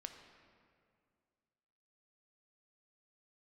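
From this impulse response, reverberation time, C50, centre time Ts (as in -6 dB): 2.2 s, 6.5 dB, 36 ms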